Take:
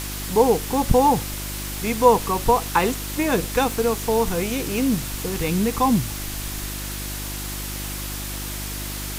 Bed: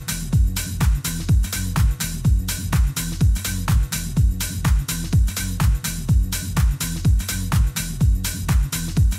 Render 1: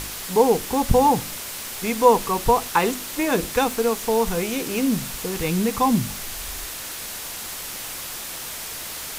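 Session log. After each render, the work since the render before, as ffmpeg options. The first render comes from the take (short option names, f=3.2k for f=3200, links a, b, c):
-af "bandreject=f=50:t=h:w=4,bandreject=f=100:t=h:w=4,bandreject=f=150:t=h:w=4,bandreject=f=200:t=h:w=4,bandreject=f=250:t=h:w=4,bandreject=f=300:t=h:w=4,bandreject=f=350:t=h:w=4"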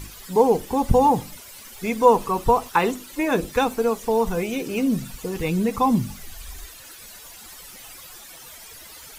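-af "afftdn=nr=14:nf=-33"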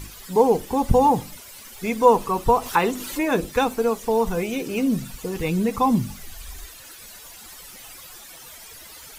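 -filter_complex "[0:a]asettb=1/sr,asplit=3[a][b][c];[a]atrim=end=2.554[d];[b]atrim=start=2.55:end=3.3,asetpts=PTS-STARTPTS,afade=t=in:d=0.004:c=qsin,afade=t=out:st=0.746:d=0.004:c=qsin,acompressor=mode=upward:threshold=-22dB:ratio=2.5:attack=3.2:release=140:knee=2.83:detection=peak[e];[c]atrim=start=3.296[f];[d][e]acrossfade=d=0.004:c1=hsin:c2=qsin[g];[g][f]acrossfade=d=0.004:c1=qsin:c2=hsin"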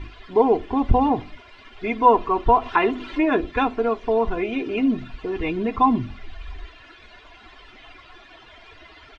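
-af "lowpass=f=3.2k:w=0.5412,lowpass=f=3.2k:w=1.3066,aecho=1:1:2.9:0.72"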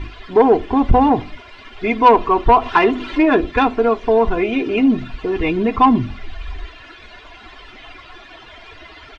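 -af "acontrast=75"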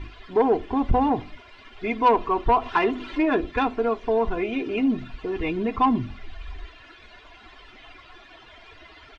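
-af "volume=-8dB"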